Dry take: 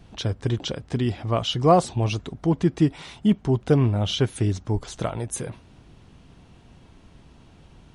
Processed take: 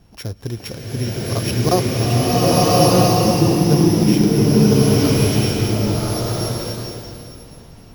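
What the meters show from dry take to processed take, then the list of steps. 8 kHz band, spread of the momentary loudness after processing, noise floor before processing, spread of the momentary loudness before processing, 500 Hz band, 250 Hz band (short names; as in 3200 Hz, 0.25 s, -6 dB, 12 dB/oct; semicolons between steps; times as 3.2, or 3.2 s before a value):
+13.0 dB, 16 LU, -52 dBFS, 10 LU, +8.0 dB, +8.5 dB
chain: sample sorter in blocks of 8 samples; crackling interface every 0.18 s, samples 1024, zero, from 0.97; bloom reverb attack 1.32 s, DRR -10.5 dB; gain -2 dB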